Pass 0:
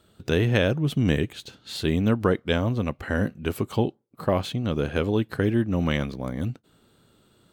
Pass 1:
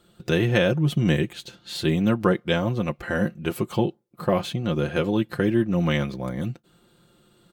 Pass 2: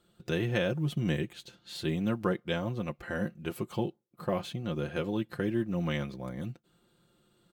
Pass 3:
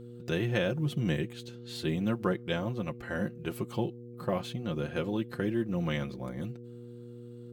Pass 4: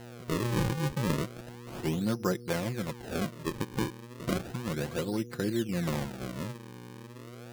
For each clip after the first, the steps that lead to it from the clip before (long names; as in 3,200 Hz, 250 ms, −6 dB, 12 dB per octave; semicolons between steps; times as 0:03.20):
comb filter 5.7 ms, depth 66%
floating-point word with a short mantissa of 6 bits; level −9 dB
hum with harmonics 120 Hz, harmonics 4, −46 dBFS −2 dB per octave
sample-and-hold swept by an LFO 37×, swing 160% 0.33 Hz